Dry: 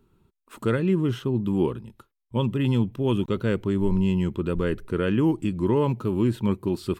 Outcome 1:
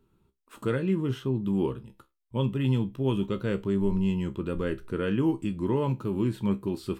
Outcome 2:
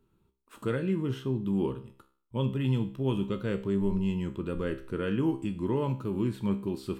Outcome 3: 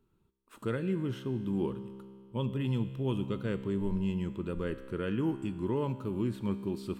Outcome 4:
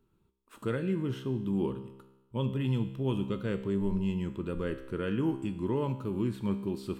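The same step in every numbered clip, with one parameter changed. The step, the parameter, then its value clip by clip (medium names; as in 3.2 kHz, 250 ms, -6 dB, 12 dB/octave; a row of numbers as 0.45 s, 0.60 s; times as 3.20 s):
feedback comb, decay: 0.2 s, 0.46 s, 2.2 s, 1 s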